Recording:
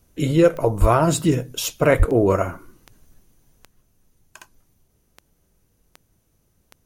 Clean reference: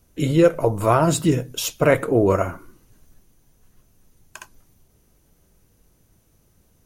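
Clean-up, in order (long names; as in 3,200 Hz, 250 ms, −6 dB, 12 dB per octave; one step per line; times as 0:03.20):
click removal
high-pass at the plosives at 0:00.80/0:01.98
level correction +5 dB, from 0:03.64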